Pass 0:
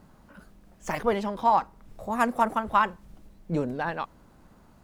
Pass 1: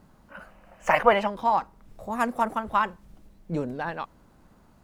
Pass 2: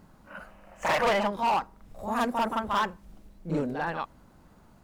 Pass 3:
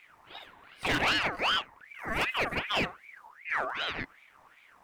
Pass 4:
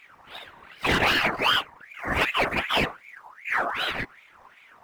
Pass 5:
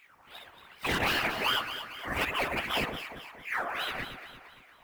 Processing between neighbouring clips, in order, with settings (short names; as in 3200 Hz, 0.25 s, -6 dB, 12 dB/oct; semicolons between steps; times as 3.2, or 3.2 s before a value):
spectral gain 0.32–1.27, 490–3100 Hz +12 dB; gain -1.5 dB
reverse echo 44 ms -6.5 dB; hard clip -21 dBFS, distortion -7 dB
ring modulator with a swept carrier 1600 Hz, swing 45%, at 2.6 Hz
median filter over 5 samples; whisperiser; gain +6 dB
high shelf 8700 Hz +10.5 dB; on a send: echo with dull and thin repeats by turns 0.115 s, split 1400 Hz, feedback 67%, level -6 dB; on the sum: gain -7.5 dB